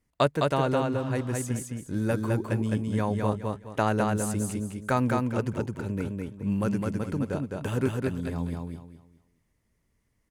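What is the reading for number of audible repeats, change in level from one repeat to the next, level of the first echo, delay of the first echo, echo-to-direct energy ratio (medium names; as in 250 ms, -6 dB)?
3, -11.0 dB, -3.0 dB, 210 ms, -2.5 dB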